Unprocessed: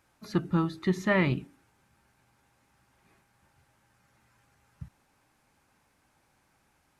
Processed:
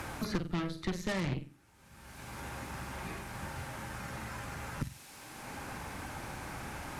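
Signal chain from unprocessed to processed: flutter echo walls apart 7.9 m, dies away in 0.31 s; added harmonics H 8 -15 dB, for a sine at -13.5 dBFS; three-band squash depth 100%; gain +3 dB

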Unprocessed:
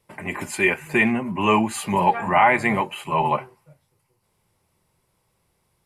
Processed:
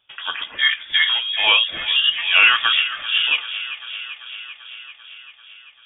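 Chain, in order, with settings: trilling pitch shifter -5.5 st, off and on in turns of 0.545 s; dark delay 0.391 s, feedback 69%, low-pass 2000 Hz, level -12 dB; inverted band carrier 3500 Hz; gain +2.5 dB

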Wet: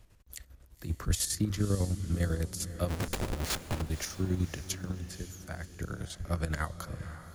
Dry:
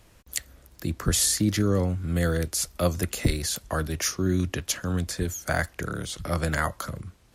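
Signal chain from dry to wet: 0.84–1.33 G.711 law mismatch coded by mu; low shelf 120 Hz +10.5 dB; 2.88–3.82 Schmitt trigger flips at -29.5 dBFS; 4.91–5.73 compressor, threshold -27 dBFS, peak gain reduction 10.5 dB; chopper 10 Hz, depth 60%, duty 50%; diffused feedback echo 0.538 s, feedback 43%, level -12 dB; gain -8 dB

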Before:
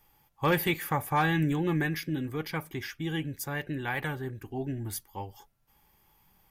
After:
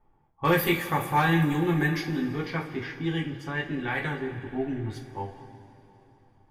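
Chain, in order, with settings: low-pass opened by the level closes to 910 Hz, open at -25 dBFS; two-slope reverb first 0.28 s, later 3.6 s, from -18 dB, DRR -0.5 dB

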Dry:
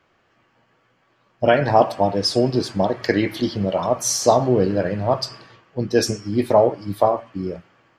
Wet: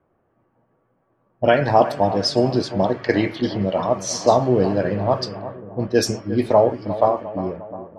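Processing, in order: analogue delay 0.354 s, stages 4096, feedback 58%, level -13.5 dB; low-pass opened by the level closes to 770 Hz, open at -13.5 dBFS

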